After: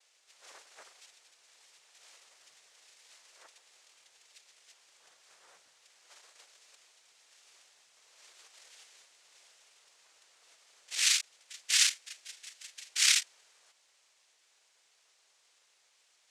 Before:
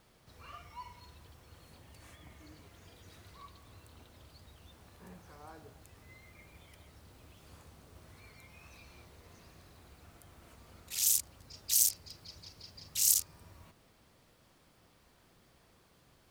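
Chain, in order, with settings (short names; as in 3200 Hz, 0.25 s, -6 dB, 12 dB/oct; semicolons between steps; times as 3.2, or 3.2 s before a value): Chebyshev high-pass 1900 Hz, order 2; high shelf 5500 Hz +10.5 dB; noise vocoder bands 3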